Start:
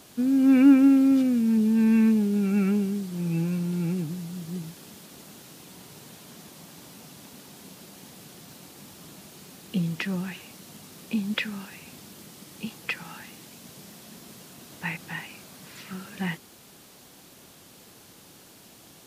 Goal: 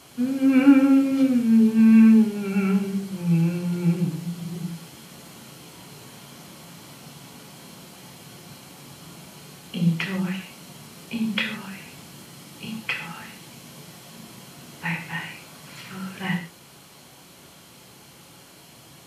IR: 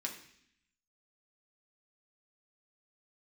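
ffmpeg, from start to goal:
-filter_complex "[1:a]atrim=start_sample=2205,atrim=end_sample=3969,asetrate=25578,aresample=44100[a];[0:a][a]afir=irnorm=-1:irlink=0"

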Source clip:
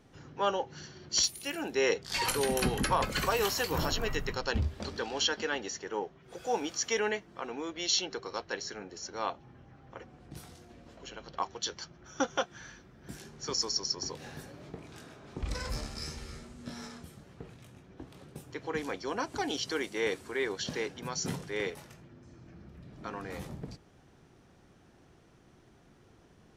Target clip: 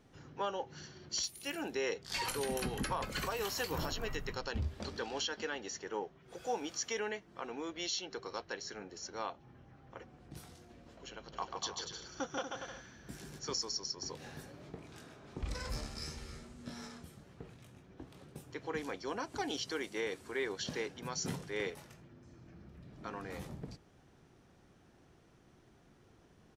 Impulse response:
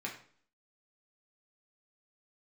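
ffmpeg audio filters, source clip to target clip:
-filter_complex "[0:a]alimiter=limit=-22.5dB:level=0:latency=1:release=233,asplit=3[a][b][c];[a]afade=t=out:st=11.32:d=0.02[d];[b]aecho=1:1:140|238|306.6|354.6|388.2:0.631|0.398|0.251|0.158|0.1,afade=t=in:st=11.32:d=0.02,afade=t=out:st=13.38:d=0.02[e];[c]afade=t=in:st=13.38:d=0.02[f];[d][e][f]amix=inputs=3:normalize=0,volume=-3.5dB"

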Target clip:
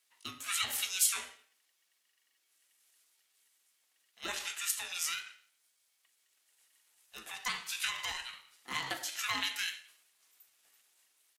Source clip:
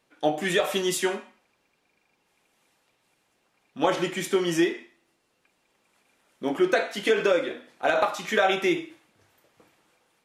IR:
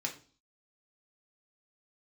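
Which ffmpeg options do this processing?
-af "highpass=f=830:w=0.5412,highpass=f=830:w=1.3066,aderivative,atempo=0.9,aeval=exprs='val(0)*sin(2*PI*500*n/s)':c=same,volume=6dB"

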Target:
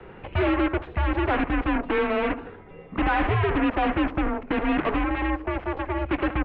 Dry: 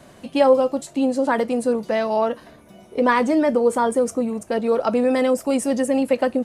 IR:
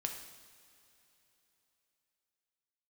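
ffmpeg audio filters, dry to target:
-filter_complex "[0:a]acrossover=split=310|1100|2100[a][b][c][d];[b]alimiter=limit=-17.5dB:level=0:latency=1:release=237[e];[a][e][c][d]amix=inputs=4:normalize=0,asettb=1/sr,asplit=3[f][g][h];[f]atrim=end=5.034[i];[g]atrim=start=5.03:end=6.11,asetpts=PTS-STARTPTS,afade=t=in:d=0.004:c=qsin,afade=t=out:st=1.076:d=0.004:c=qsin,acompressor=threshold=-27dB:ratio=2.5[j];[h]atrim=start=6.106[k];[i][j]acrossfade=d=0.004:c1=hsin:c2=qsin[l];[l][k]acrossfade=d=0.004:c1=qsin:c2=hsin,aecho=1:1:74|148|222:0.224|0.0739|0.0244,asoftclip=type=tanh:threshold=-17dB,aeval=exprs='0.141*(cos(1*acos(clip(val(0)/0.141,-1,1)))-cos(1*PI/2))+0.0562*(cos(7*acos(clip(val(0)/0.141,-1,1)))-cos(7*PI/2))':c=same,highpass=f=240:t=q:w=0.5412,highpass=f=240:t=q:w=1.307,lowpass=f=2.9k:t=q:w=0.5176,lowpass=f=2.9k:t=q:w=0.7071,lowpass=f=2.9k:t=q:w=1.932,afreqshift=-200"

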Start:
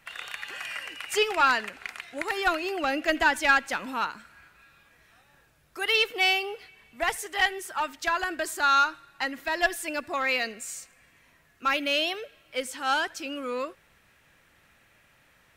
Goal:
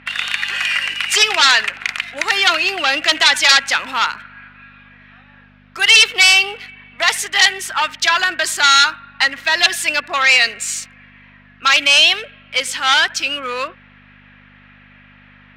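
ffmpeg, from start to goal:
-filter_complex "[0:a]acrossover=split=2700[a][b];[b]aeval=exprs='sgn(val(0))*max(abs(val(0))-0.002,0)':c=same[c];[a][c]amix=inputs=2:normalize=0,aeval=exprs='val(0)+0.0112*(sin(2*PI*50*n/s)+sin(2*PI*2*50*n/s)/2+sin(2*PI*3*50*n/s)/3+sin(2*PI*4*50*n/s)/4+sin(2*PI*5*50*n/s)/5)':c=same,aeval=exprs='0.316*sin(PI/2*3.16*val(0)/0.316)':c=same,bandpass=f=3.6k:t=q:w=0.86:csg=0,volume=7.5dB"

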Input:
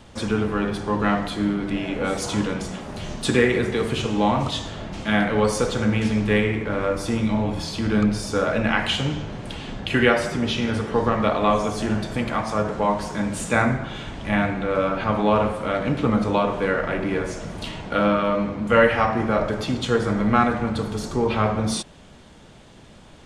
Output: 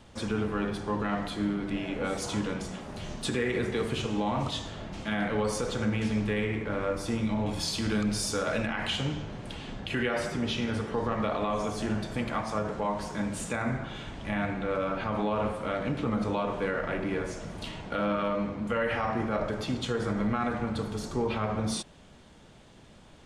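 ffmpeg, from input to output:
-filter_complex "[0:a]asettb=1/sr,asplit=3[a][b][c];[a]atrim=end=7.464[d];[b]atrim=start=7.46:end=8.67,asetpts=PTS-STARTPTS,afade=t=in:d=0.004:c=qsin,afade=t=out:st=1.206:d=0.004:c=qsin,highshelf=f=3.3k:g=11[e];[c]atrim=start=8.666[f];[d][e]acrossfade=d=0.004:c1=hsin:c2=qsin[g];[g][f]acrossfade=d=0.004:c1=qsin:c2=hsin,alimiter=limit=-13dB:level=0:latency=1:release=57,volume=-6.5dB"

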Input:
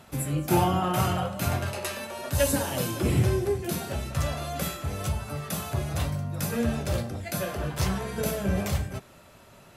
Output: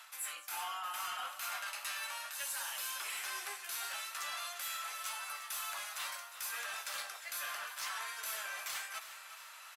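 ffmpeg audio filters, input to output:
-af "highpass=f=1.1k:w=0.5412,highpass=f=1.1k:w=1.3066,areverse,acompressor=threshold=-42dB:ratio=6,areverse,asoftclip=type=tanh:threshold=-35.5dB,aecho=1:1:355|710|1065|1420|1775|2130:0.224|0.121|0.0653|0.0353|0.019|0.0103,volume=4.5dB"

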